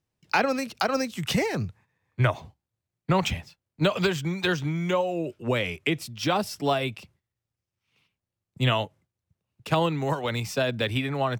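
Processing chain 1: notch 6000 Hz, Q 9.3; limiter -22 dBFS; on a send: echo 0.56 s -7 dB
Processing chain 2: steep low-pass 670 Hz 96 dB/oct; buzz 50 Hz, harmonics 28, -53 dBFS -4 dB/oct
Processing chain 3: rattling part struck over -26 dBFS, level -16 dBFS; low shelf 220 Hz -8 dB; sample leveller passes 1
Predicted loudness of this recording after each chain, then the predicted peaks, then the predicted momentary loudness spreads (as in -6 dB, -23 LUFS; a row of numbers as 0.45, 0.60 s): -32.0, -29.0, -24.5 LUFS; -19.0, -13.0, -10.0 dBFS; 11, 8, 6 LU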